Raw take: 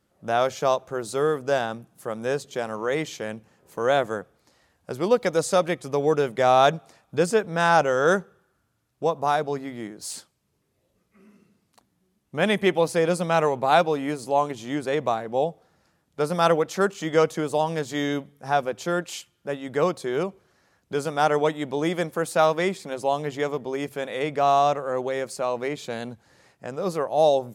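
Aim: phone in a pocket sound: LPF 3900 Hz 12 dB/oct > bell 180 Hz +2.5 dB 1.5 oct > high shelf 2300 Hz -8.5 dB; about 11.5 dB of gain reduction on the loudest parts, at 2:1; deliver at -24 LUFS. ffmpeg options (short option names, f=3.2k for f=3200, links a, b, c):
-af "acompressor=threshold=-35dB:ratio=2,lowpass=3.9k,equalizer=f=180:t=o:w=1.5:g=2.5,highshelf=f=2.3k:g=-8.5,volume=10dB"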